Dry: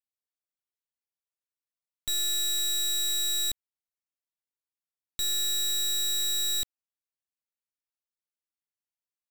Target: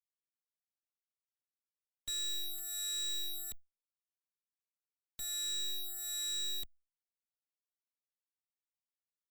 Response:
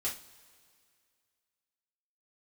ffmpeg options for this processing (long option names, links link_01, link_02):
-filter_complex "[0:a]afftfilt=real='re*gte(hypot(re,im),0.00178)':imag='im*gte(hypot(re,im),0.00178)':win_size=1024:overlap=0.75,asplit=2[link_01][link_02];[link_02]adelay=2.7,afreqshift=1.2[link_03];[link_01][link_03]amix=inputs=2:normalize=1,volume=-7.5dB"